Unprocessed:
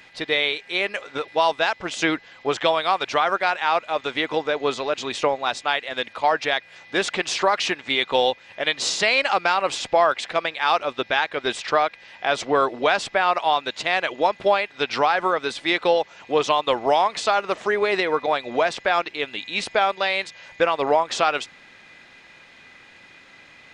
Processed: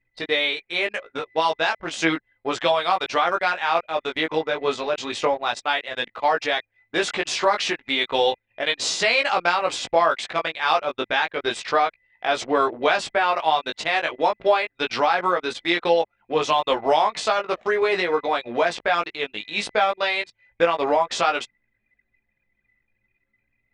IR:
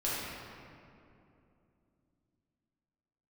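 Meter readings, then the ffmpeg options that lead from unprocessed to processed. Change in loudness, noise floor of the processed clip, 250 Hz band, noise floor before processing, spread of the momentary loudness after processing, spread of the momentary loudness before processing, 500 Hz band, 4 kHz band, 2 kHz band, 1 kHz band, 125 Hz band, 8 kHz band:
-0.5 dB, -75 dBFS, 0.0 dB, -50 dBFS, 6 LU, 6 LU, -0.5 dB, -0.5 dB, -0.5 dB, -0.5 dB, -1.0 dB, -1.0 dB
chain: -af "flanger=delay=17:depth=2:speed=0.33,anlmdn=1.58,volume=2.5dB"

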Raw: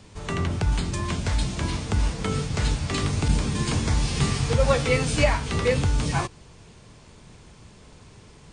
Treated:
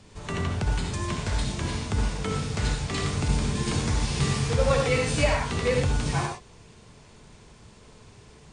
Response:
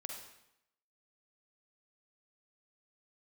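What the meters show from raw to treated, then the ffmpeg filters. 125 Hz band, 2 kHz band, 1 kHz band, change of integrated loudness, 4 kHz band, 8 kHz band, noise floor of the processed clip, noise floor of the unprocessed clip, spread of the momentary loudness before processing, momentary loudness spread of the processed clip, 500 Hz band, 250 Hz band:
-2.0 dB, -1.5 dB, -1.0 dB, -2.0 dB, -1.5 dB, -1.5 dB, -52 dBFS, -50 dBFS, 6 LU, 7 LU, -1.0 dB, -2.0 dB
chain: -filter_complex "[1:a]atrim=start_sample=2205,atrim=end_sample=4410,asetrate=33957,aresample=44100[a];[0:a][a]afir=irnorm=-1:irlink=0"

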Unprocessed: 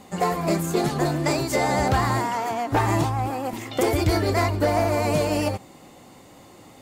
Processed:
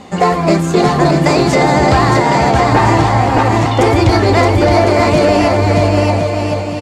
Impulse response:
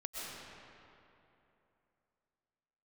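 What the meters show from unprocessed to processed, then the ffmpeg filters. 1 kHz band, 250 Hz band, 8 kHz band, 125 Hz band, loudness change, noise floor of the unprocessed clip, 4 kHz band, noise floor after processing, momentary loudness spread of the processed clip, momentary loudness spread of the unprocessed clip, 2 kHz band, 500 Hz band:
+12.5 dB, +12.5 dB, +6.5 dB, +12.5 dB, +11.5 dB, -49 dBFS, +11.5 dB, -18 dBFS, 3 LU, 5 LU, +12.5 dB, +12.5 dB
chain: -af "lowpass=5.8k,aecho=1:1:620|1054|1358|1570|1719:0.631|0.398|0.251|0.158|0.1,alimiter=level_in=12.5dB:limit=-1dB:release=50:level=0:latency=1,volume=-1dB"

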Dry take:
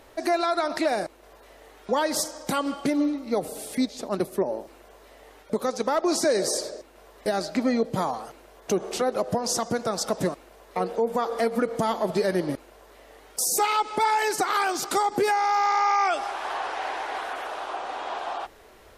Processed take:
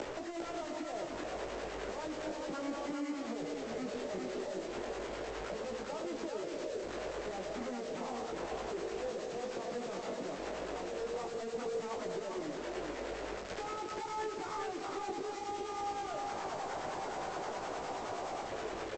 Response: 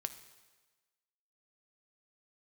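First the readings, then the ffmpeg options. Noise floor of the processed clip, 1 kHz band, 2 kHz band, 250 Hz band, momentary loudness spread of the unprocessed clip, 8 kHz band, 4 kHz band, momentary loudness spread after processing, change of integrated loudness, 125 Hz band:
-43 dBFS, -14.5 dB, -13.0 dB, -13.0 dB, 10 LU, -18.5 dB, -13.5 dB, 2 LU, -13.5 dB, -13.5 dB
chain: -filter_complex "[0:a]aeval=exprs='(tanh(158*val(0)+0.05)-tanh(0.05))/158':c=same,lowpass=3.5k,equalizer=f=410:w=0.53:g=13.5,aresample=16000,acrusher=bits=6:mix=0:aa=0.000001,aresample=44100,acrossover=split=260|2400[a][b][c];[a]acompressor=threshold=-54dB:ratio=4[d];[b]acompressor=threshold=-42dB:ratio=4[e];[c]acompressor=threshold=-58dB:ratio=4[f];[d][e][f]amix=inputs=3:normalize=0,acrossover=split=830[g][h];[g]aeval=exprs='val(0)*(1-0.5/2+0.5/2*cos(2*PI*9.6*n/s))':c=same[i];[h]aeval=exprs='val(0)*(1-0.5/2-0.5/2*cos(2*PI*9.6*n/s))':c=same[j];[i][j]amix=inputs=2:normalize=0,acompressor=threshold=-52dB:ratio=6,flanger=delay=17.5:depth=3.8:speed=0.34,aecho=1:1:401:0.631,volume=16dB"

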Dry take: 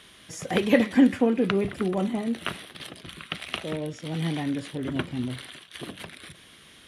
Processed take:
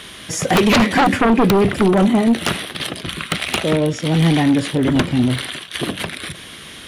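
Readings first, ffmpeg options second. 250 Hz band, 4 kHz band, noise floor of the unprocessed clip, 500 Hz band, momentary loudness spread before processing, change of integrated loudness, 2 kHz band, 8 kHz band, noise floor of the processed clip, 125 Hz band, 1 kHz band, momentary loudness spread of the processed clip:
+9.5 dB, +13.5 dB, -52 dBFS, +9.5 dB, 20 LU, +9.5 dB, +12.0 dB, +16.0 dB, -37 dBFS, +13.5 dB, +16.0 dB, 13 LU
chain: -af "aeval=exprs='0.531*sin(PI/2*5.62*val(0)/0.531)':c=same,volume=-3.5dB"

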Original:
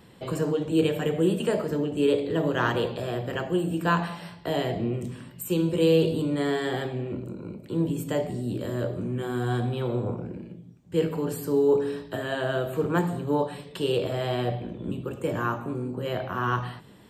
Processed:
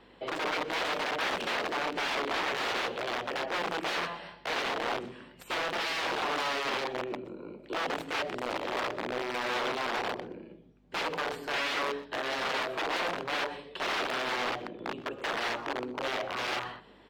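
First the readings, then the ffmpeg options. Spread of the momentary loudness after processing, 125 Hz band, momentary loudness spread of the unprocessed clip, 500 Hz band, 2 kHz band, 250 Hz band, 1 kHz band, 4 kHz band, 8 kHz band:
8 LU, -22.5 dB, 10 LU, -9.0 dB, +3.5 dB, -14.0 dB, +1.0 dB, +4.0 dB, -1.0 dB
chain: -filter_complex "[0:a]aeval=exprs='(mod(16.8*val(0)+1,2)-1)/16.8':c=same,aeval=exprs='val(0)+0.00501*(sin(2*PI*50*n/s)+sin(2*PI*2*50*n/s)/2+sin(2*PI*3*50*n/s)/3+sin(2*PI*4*50*n/s)/4+sin(2*PI*5*50*n/s)/5)':c=same,acrossover=split=290 4500:gain=0.0891 1 0.0631[a][b][c];[a][b][c]amix=inputs=3:normalize=0,aecho=1:1:124:0.106" -ar 48000 -c:a aac -b:a 64k

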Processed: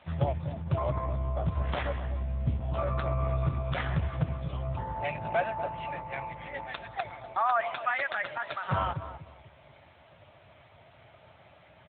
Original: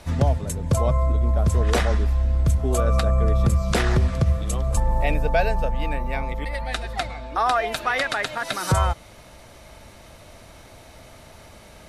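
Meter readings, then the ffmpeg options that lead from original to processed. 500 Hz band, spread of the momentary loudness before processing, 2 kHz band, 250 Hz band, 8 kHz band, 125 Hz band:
-8.5 dB, 8 LU, -6.5 dB, -10.0 dB, under -40 dB, -9.5 dB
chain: -filter_complex "[0:a]asplit=2[a][b];[b]adelay=244,lowpass=f=860:p=1,volume=-9.5dB,asplit=2[c][d];[d]adelay=244,lowpass=f=860:p=1,volume=0.32,asplit=2[e][f];[f]adelay=244,lowpass=f=860:p=1,volume=0.32,asplit=2[g][h];[h]adelay=244,lowpass=f=860:p=1,volume=0.32[i];[a][c][e][g][i]amix=inputs=5:normalize=0,afftfilt=real='re*(1-between(b*sr/4096,180,520))':imag='im*(1-between(b*sr/4096,180,520))':win_size=4096:overlap=0.75,volume=-4.5dB" -ar 8000 -c:a libopencore_amrnb -b:a 6700

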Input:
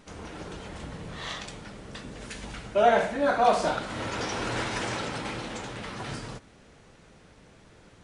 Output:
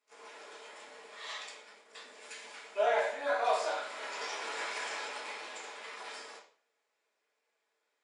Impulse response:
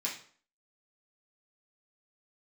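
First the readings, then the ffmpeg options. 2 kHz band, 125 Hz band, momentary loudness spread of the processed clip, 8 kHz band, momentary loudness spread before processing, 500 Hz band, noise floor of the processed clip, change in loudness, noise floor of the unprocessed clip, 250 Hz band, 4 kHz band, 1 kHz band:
-5.0 dB, under -40 dB, 20 LU, -5.5 dB, 19 LU, -7.5 dB, -82 dBFS, -7.0 dB, -55 dBFS, -23.0 dB, -5.5 dB, -8.5 dB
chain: -filter_complex "[0:a]agate=range=-17dB:threshold=-42dB:ratio=16:detection=peak,highpass=f=450:w=0.5412,highpass=f=450:w=1.3066[a];[1:a]atrim=start_sample=2205[b];[a][b]afir=irnorm=-1:irlink=0,volume=-8.5dB"

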